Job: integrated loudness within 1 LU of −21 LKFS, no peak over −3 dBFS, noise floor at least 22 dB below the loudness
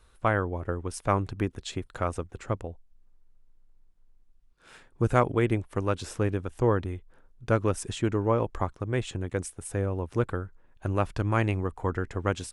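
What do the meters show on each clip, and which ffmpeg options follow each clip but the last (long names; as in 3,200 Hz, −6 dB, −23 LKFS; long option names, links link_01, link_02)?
integrated loudness −29.5 LKFS; sample peak −7.5 dBFS; target loudness −21.0 LKFS
→ -af "volume=8.5dB,alimiter=limit=-3dB:level=0:latency=1"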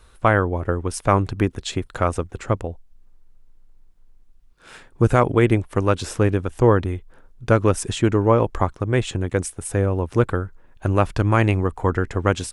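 integrated loudness −21.0 LKFS; sample peak −3.0 dBFS; background noise floor −51 dBFS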